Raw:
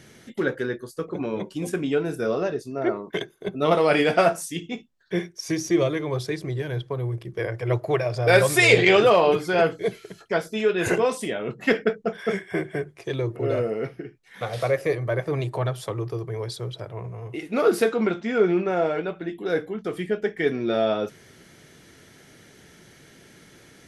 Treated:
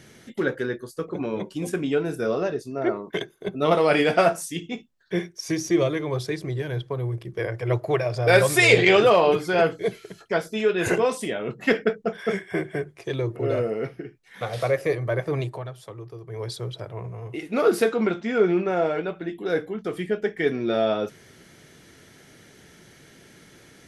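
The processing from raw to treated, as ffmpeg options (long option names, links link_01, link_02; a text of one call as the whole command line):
ffmpeg -i in.wav -filter_complex "[0:a]asplit=3[link_01][link_02][link_03];[link_01]atrim=end=15.63,asetpts=PTS-STARTPTS,afade=type=out:start_time=15.41:duration=0.22:silence=0.316228[link_04];[link_02]atrim=start=15.63:end=16.24,asetpts=PTS-STARTPTS,volume=-10dB[link_05];[link_03]atrim=start=16.24,asetpts=PTS-STARTPTS,afade=type=in:duration=0.22:silence=0.316228[link_06];[link_04][link_05][link_06]concat=n=3:v=0:a=1" out.wav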